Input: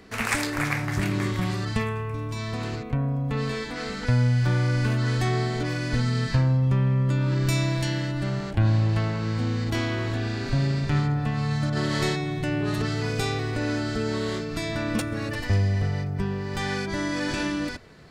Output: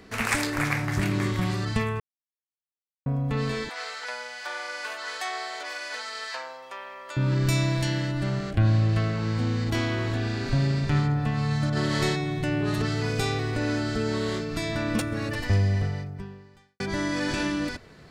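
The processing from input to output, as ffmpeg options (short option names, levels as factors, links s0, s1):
-filter_complex "[0:a]asettb=1/sr,asplit=3[s0][s1][s2];[s0]atrim=end=3.694[s3];[s1]atrim=start=3.69:end=7.17,asetpts=PTS-STARTPTS,afade=t=in:d=0.004:c=qsin,afade=t=out:st=3.476:d=0.004:c=qsin,highpass=f=620:w=0.5412,highpass=f=620:w=1.3066[s4];[s2]atrim=start=7.166[s5];[s3][s4]acrossfade=d=0.004:c1=hsin:c2=qsin[s6];[s6][s5]acrossfade=d=0.004:c1=qsin:c2=hsin,asettb=1/sr,asplit=3[s7][s8][s9];[s7]atrim=end=8.394[s10];[s8]atrim=start=8.39:end=9.18,asetpts=PTS-STARTPTS,afade=t=in:d=0.004:c=qsin,afade=t=out:st=0.786:d=0.004:c=qsin,asuperstop=centerf=900:order=8:qfactor=5[s11];[s9]atrim=start=9.176[s12];[s10][s11]acrossfade=d=0.004:c1=hsin:c2=qsin[s13];[s13][s12]acrossfade=d=0.004:c1=qsin:c2=hsin,asplit=4[s14][s15][s16][s17];[s14]atrim=end=2,asetpts=PTS-STARTPTS,afade=t=out:st=1.996:d=0.004:c=hsin[s18];[s15]atrim=start=2:end=3.06,asetpts=PTS-STARTPTS,volume=0[s19];[s16]atrim=start=3.06:end=16.8,asetpts=PTS-STARTPTS,afade=t=in:d=0.004:c=hsin,afade=t=out:st=12.69:d=1.05:c=qua[s20];[s17]atrim=start=16.8,asetpts=PTS-STARTPTS,afade=t=in:d=0.004:c=hsin[s21];[s18][s19][s20][s21]concat=n=4:v=0:a=1"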